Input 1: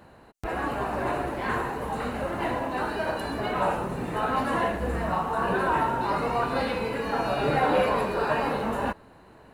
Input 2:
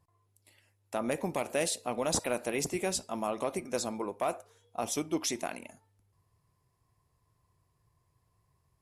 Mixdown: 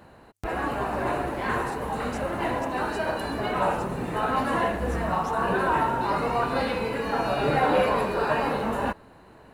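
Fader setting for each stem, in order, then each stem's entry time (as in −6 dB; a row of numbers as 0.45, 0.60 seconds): +1.0, −16.5 decibels; 0.00, 0.00 seconds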